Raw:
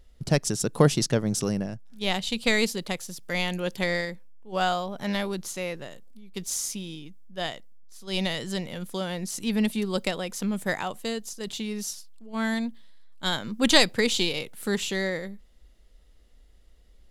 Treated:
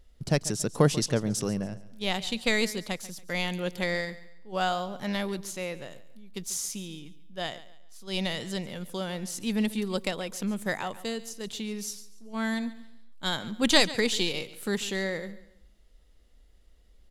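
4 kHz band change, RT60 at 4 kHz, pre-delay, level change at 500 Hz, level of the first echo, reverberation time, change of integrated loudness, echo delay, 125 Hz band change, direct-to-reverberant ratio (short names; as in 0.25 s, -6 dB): -2.5 dB, none, none, -2.5 dB, -17.0 dB, none, -2.5 dB, 0.14 s, -2.5 dB, none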